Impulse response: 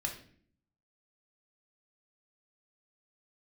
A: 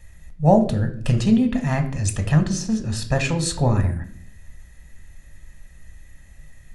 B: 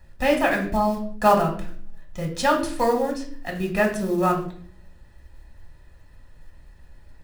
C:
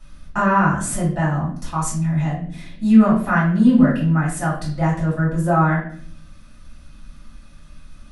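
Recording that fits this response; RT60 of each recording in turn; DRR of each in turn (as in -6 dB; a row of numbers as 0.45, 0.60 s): B; 0.55, 0.55, 0.55 s; 5.5, 1.0, -8.5 dB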